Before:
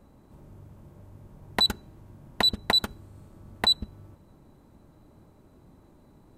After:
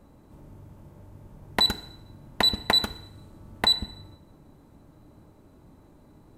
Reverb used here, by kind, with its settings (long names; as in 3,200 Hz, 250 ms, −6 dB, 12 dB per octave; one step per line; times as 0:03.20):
feedback delay network reverb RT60 0.81 s, high-frequency decay 0.95×, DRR 12 dB
level +1.5 dB